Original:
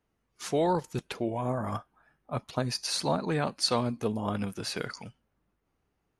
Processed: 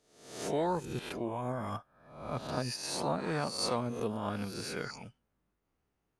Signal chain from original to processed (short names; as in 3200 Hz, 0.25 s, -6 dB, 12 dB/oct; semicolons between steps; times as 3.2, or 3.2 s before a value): spectral swells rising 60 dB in 0.68 s; dynamic EQ 4000 Hz, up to -6 dB, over -41 dBFS, Q 1.5; gain -6 dB